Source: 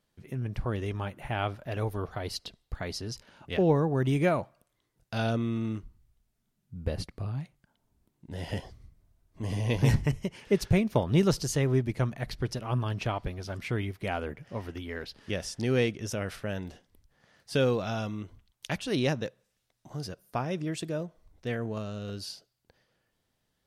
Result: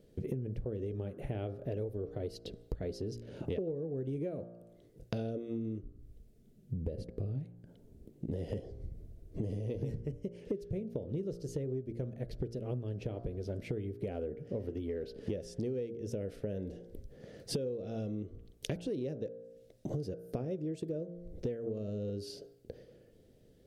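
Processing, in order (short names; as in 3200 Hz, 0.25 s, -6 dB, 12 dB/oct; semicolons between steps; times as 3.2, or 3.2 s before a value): resonant low shelf 680 Hz +12.5 dB, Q 3; de-hum 58.03 Hz, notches 29; compressor 20:1, threshold -37 dBFS, peak gain reduction 35.5 dB; gain +3 dB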